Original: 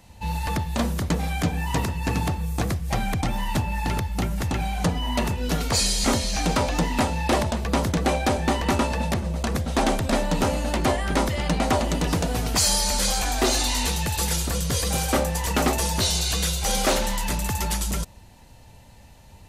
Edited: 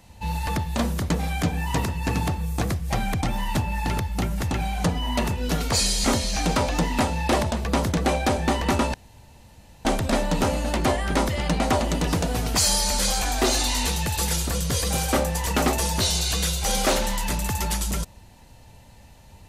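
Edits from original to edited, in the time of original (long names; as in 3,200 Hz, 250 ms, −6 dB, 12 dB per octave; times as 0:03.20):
0:08.94–0:09.85: fill with room tone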